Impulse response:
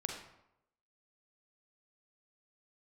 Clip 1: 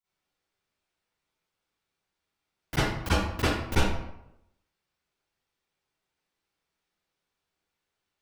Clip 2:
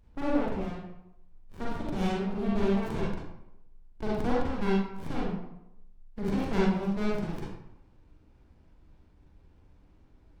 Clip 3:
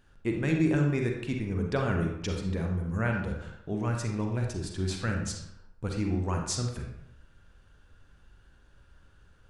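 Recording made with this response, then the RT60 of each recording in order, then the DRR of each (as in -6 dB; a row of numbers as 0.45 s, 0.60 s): 3; 0.85 s, 0.85 s, 0.85 s; -16.0 dB, -6.5 dB, 1.5 dB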